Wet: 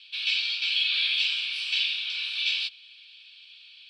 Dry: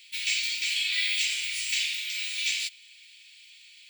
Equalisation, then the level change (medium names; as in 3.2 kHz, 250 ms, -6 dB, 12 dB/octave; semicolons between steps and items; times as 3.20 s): low-pass 12 kHz 12 dB/octave; distance through air 130 m; static phaser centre 2 kHz, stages 6; +7.5 dB